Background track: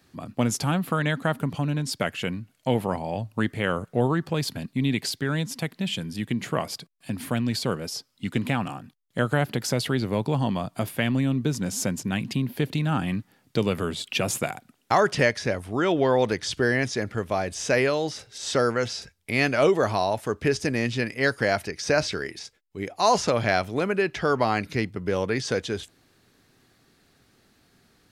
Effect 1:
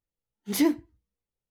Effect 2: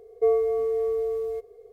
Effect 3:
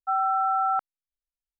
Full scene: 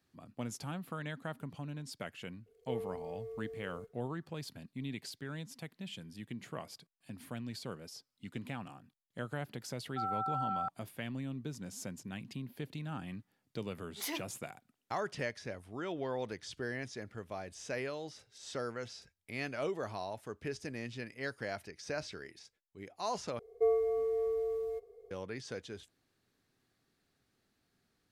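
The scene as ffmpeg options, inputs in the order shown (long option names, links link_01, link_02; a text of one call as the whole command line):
ffmpeg -i bed.wav -i cue0.wav -i cue1.wav -i cue2.wav -filter_complex "[2:a]asplit=2[link_01][link_02];[0:a]volume=-16.5dB[link_03];[link_01]equalizer=frequency=790:width_type=o:width=1.4:gain=-10.5[link_04];[3:a]bandreject=frequency=810:width=12[link_05];[1:a]highpass=670[link_06];[link_03]asplit=2[link_07][link_08];[link_07]atrim=end=23.394[link_09];[link_02]atrim=end=1.72,asetpts=PTS-STARTPTS,volume=-7.5dB[link_10];[link_08]atrim=start=25.106[link_11];[link_04]atrim=end=1.72,asetpts=PTS-STARTPTS,volume=-14.5dB,afade=type=in:duration=0.004:curve=hsin,afade=type=out:start_time=1.716:duration=0.004:curve=hsin,adelay=2460[link_12];[link_05]atrim=end=1.59,asetpts=PTS-STARTPTS,volume=-11dB,afade=type=in:duration=0.004:curve=hsin,afade=type=out:start_time=1.586:duration=0.004:curve=hsin,adelay=9890[link_13];[link_06]atrim=end=1.5,asetpts=PTS-STARTPTS,volume=-8dB,afade=type=in:duration=0.004:curve=hsin,afade=type=out:start_time=1.496:duration=0.004:curve=hsin,adelay=594468S[link_14];[link_09][link_10]acrossfade=duration=0.004:curve1=hsin:curve2=hsin[link_15];[link_15][link_11]acrossfade=duration=0.004:curve1=hsin:curve2=hsin[link_16];[link_16][link_12][link_13][link_14]amix=inputs=4:normalize=0" out.wav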